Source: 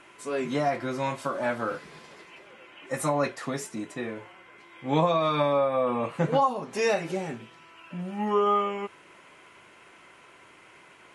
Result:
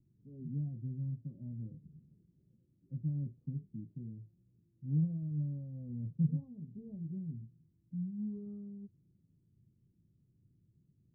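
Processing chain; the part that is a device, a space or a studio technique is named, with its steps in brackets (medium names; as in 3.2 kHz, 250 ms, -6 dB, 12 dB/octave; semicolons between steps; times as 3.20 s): the neighbour's flat through the wall (low-pass 180 Hz 24 dB/octave; peaking EQ 110 Hz +5 dB 0.93 oct); trim -1.5 dB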